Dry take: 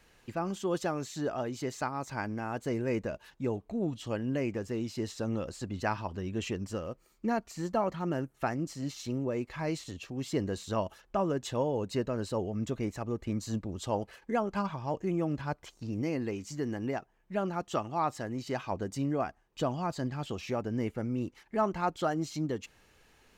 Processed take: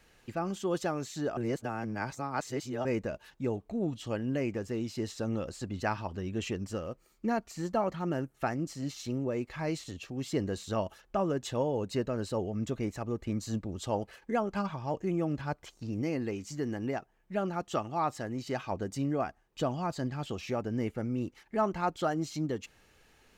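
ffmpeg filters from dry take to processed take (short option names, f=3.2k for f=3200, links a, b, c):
-filter_complex "[0:a]asplit=3[a][b][c];[a]atrim=end=1.372[d];[b]atrim=start=1.368:end=2.852,asetpts=PTS-STARTPTS,areverse[e];[c]atrim=start=2.848[f];[d][e]acrossfade=d=0.004:c1=hsin:c2=hsin[g];[g][f]acrossfade=d=0.004:c1=hsin:c2=hsin,bandreject=f=1k:w=17"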